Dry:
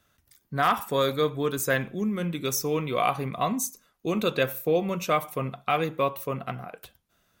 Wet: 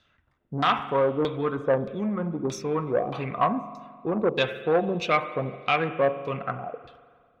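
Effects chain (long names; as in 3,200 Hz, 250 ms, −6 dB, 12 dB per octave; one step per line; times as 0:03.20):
auto-filter low-pass saw down 1.6 Hz 290–4,200 Hz
spring reverb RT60 1.8 s, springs 43 ms, chirp 55 ms, DRR 12.5 dB
saturating transformer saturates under 840 Hz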